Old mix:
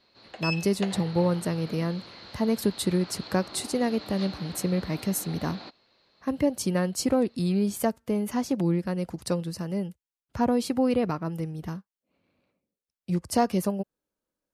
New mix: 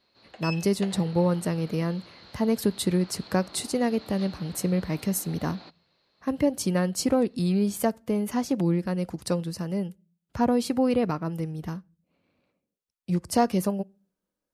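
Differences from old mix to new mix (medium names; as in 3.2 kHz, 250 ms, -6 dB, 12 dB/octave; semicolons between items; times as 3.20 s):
background -4.5 dB; reverb: on, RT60 0.40 s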